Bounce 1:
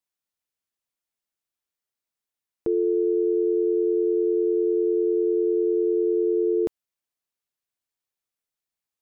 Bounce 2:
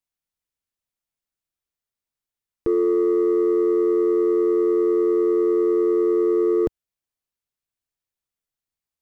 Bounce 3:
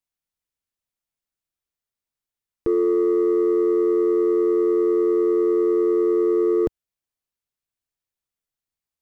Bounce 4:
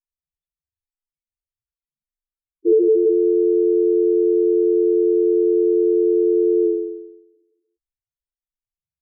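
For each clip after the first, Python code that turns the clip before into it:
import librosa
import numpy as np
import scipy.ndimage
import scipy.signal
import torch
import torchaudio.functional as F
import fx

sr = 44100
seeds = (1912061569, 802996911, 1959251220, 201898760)

y1 = fx.low_shelf(x, sr, hz=130.0, db=11.5)
y1 = fx.leveller(y1, sr, passes=1)
y2 = y1
y3 = fx.room_flutter(y2, sr, wall_m=7.5, rt60_s=1.1)
y3 = fx.leveller(y3, sr, passes=1)
y3 = fx.spec_topn(y3, sr, count=2)
y3 = y3 * librosa.db_to_amplitude(7.5)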